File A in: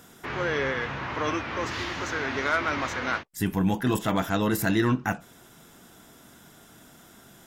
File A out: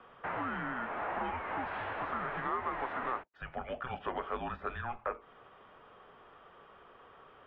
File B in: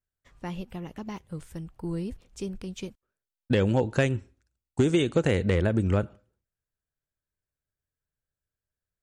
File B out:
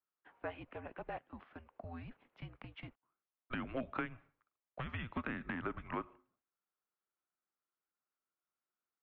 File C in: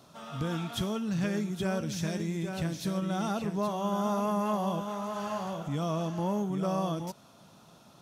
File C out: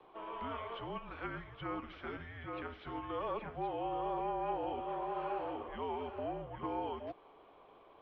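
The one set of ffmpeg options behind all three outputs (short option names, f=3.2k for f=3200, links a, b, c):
-filter_complex "[0:a]acrossover=split=290|1300[a][b][c];[a]acompressor=threshold=-29dB:ratio=4[d];[b]acompressor=threshold=-37dB:ratio=4[e];[c]acompressor=threshold=-40dB:ratio=4[f];[d][e][f]amix=inputs=3:normalize=0,acrossover=split=590 2100:gain=0.0708 1 0.2[g][h][i];[g][h][i]amix=inputs=3:normalize=0,highpass=f=220:t=q:w=0.5412,highpass=f=220:t=q:w=1.307,lowpass=f=3.6k:t=q:w=0.5176,lowpass=f=3.6k:t=q:w=0.7071,lowpass=f=3.6k:t=q:w=1.932,afreqshift=-250,volume=3dB"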